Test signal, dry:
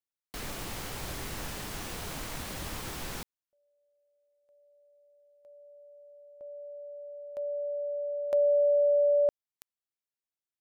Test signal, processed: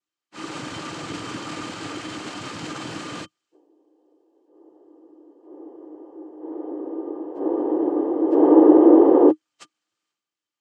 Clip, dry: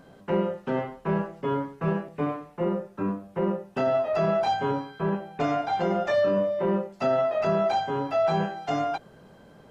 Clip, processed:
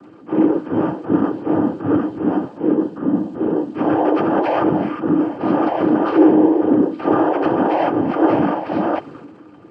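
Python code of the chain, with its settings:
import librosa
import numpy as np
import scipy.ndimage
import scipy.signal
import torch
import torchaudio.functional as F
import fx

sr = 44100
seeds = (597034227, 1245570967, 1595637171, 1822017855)

y = fx.partial_stretch(x, sr, pct=77)
y = fx.high_shelf(y, sr, hz=4900.0, db=-10.0)
y = fx.transient(y, sr, attack_db=-6, sustain_db=9)
y = fx.noise_vocoder(y, sr, seeds[0], bands=8)
y = fx.small_body(y, sr, hz=(310.0, 1200.0, 3100.0), ring_ms=70, db=13)
y = F.gain(torch.from_numpy(y), 7.0).numpy()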